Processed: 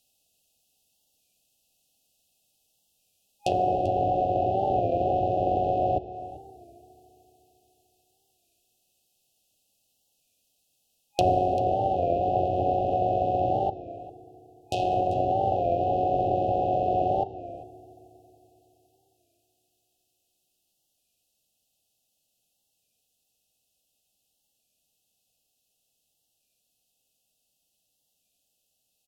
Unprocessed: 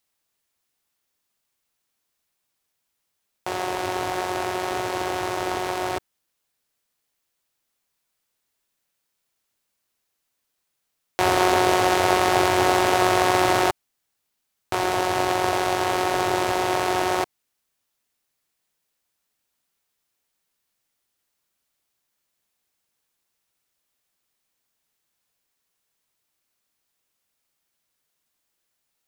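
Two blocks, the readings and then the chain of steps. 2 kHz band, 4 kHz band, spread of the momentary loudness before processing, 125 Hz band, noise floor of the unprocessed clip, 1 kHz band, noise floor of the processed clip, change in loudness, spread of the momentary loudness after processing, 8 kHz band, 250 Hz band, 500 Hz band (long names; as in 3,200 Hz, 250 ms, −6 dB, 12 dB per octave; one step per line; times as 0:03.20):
−25.0 dB, −16.5 dB, 10 LU, +2.0 dB, −78 dBFS, −2.0 dB, −76 dBFS, −3.5 dB, 12 LU, below −20 dB, −5.0 dB, −1.5 dB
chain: brick-wall band-stop 820–2,500 Hz
parametric band 360 Hz −7 dB 0.44 octaves
speech leveller
treble cut that deepens with the level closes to 870 Hz, closed at −22 dBFS
on a send: single-tap delay 391 ms −16.5 dB
on the sum: feedback delay network reverb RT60 3.6 s, high-frequency decay 0.6×, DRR 14 dB
wow of a warped record 33 1/3 rpm, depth 100 cents
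level +2 dB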